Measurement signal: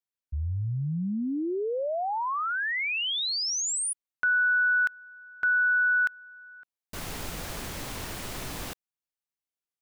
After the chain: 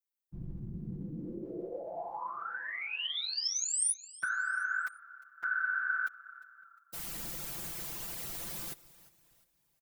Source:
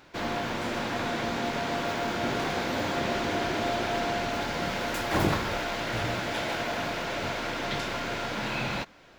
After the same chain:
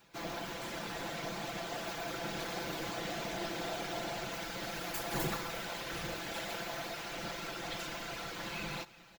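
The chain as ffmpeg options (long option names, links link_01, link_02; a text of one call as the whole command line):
ffmpeg -i in.wav -filter_complex "[0:a]tremolo=f=190:d=0.519,asplit=2[link_01][link_02];[link_02]asplit=3[link_03][link_04][link_05];[link_03]adelay=353,afreqshift=-33,volume=-19.5dB[link_06];[link_04]adelay=706,afreqshift=-66,volume=-27dB[link_07];[link_05]adelay=1059,afreqshift=-99,volume=-34.6dB[link_08];[link_06][link_07][link_08]amix=inputs=3:normalize=0[link_09];[link_01][link_09]amix=inputs=2:normalize=0,afftfilt=real='hypot(re,im)*cos(2*PI*random(0))':imag='hypot(re,im)*sin(2*PI*random(1))':win_size=512:overlap=0.75,aemphasis=mode=production:type=50kf,aecho=1:1:5.9:0.65,volume=-4dB" out.wav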